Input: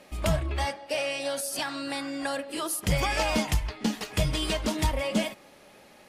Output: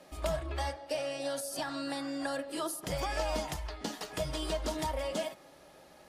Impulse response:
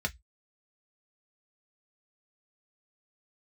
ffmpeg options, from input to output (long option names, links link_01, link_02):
-filter_complex "[0:a]acrossover=split=310|1100[link_01][link_02][link_03];[link_01]acompressor=threshold=-39dB:ratio=4[link_04];[link_02]acompressor=threshold=-32dB:ratio=4[link_05];[link_03]acompressor=threshold=-34dB:ratio=4[link_06];[link_04][link_05][link_06]amix=inputs=3:normalize=0,asplit=2[link_07][link_08];[1:a]atrim=start_sample=2205,lowpass=4000[link_09];[link_08][link_09]afir=irnorm=-1:irlink=0,volume=-11.5dB[link_10];[link_07][link_10]amix=inputs=2:normalize=0,volume=-4dB"